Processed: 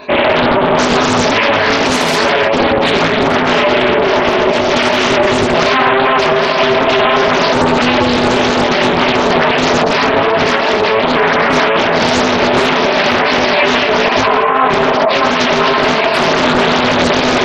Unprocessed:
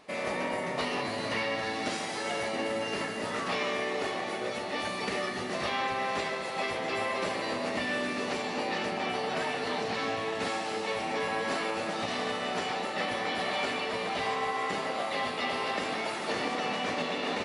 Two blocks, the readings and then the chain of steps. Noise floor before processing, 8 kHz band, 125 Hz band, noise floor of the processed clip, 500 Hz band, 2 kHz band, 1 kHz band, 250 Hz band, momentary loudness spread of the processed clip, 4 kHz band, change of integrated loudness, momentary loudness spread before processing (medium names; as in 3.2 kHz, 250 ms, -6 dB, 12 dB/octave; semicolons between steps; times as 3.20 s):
-35 dBFS, +17.5 dB, +22.5 dB, -13 dBFS, +21.5 dB, +19.5 dB, +20.0 dB, +22.0 dB, 1 LU, +20.0 dB, +20.5 dB, 2 LU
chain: chorus 2.6 Hz, delay 19 ms, depth 6.5 ms; spectral gate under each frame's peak -20 dB strong; rippled EQ curve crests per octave 1.5, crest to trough 14 dB; loudness maximiser +26.5 dB; loudspeaker Doppler distortion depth 1 ms; trim -1.5 dB